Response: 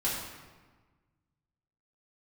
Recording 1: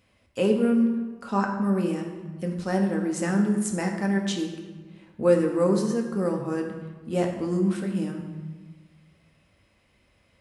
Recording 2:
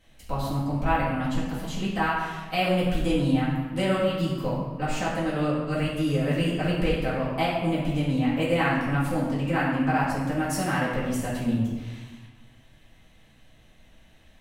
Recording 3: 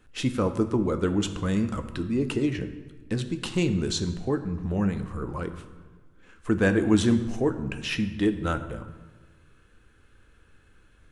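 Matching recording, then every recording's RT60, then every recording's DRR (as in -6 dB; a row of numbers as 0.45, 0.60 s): 2; 1.4, 1.4, 1.4 s; 1.5, -8.5, 8.0 dB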